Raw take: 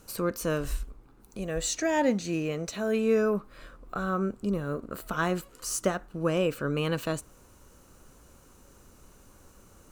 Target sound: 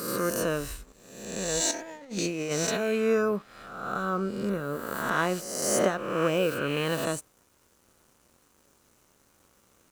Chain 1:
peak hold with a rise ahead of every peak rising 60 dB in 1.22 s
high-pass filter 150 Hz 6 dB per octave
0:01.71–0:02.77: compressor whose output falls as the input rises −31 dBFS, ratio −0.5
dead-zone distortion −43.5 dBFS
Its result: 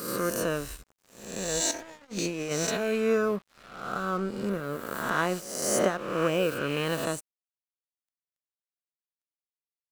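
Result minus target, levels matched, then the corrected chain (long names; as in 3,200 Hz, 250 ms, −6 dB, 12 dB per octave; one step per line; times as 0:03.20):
dead-zone distortion: distortion +10 dB
peak hold with a rise ahead of every peak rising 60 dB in 1.22 s
high-pass filter 150 Hz 6 dB per octave
0:01.71–0:02.77: compressor whose output falls as the input rises −31 dBFS, ratio −0.5
dead-zone distortion −55 dBFS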